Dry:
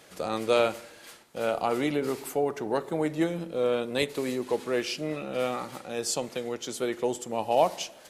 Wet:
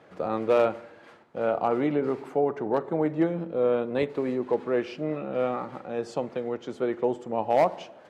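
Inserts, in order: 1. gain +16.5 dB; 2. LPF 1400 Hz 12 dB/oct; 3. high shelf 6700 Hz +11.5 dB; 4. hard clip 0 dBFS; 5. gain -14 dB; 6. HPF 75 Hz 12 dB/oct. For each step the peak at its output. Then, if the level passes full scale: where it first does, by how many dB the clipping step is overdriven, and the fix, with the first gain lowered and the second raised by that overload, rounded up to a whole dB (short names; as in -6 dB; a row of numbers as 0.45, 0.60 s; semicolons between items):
+6.0, +5.5, +5.5, 0.0, -14.0, -12.0 dBFS; step 1, 5.5 dB; step 1 +10.5 dB, step 5 -8 dB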